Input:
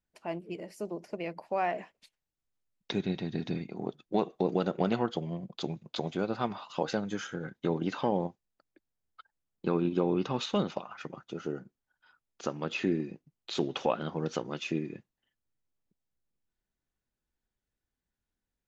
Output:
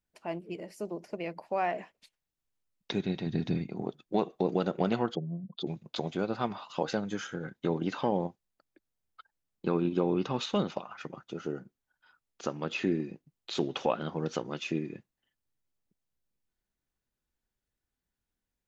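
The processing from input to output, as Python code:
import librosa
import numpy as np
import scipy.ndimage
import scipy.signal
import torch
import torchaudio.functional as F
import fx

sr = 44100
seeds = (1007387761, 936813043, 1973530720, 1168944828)

y = fx.peak_eq(x, sr, hz=88.0, db=6.5, octaves=2.5, at=(3.26, 3.82))
y = fx.spec_expand(y, sr, power=1.9, at=(5.15, 5.67))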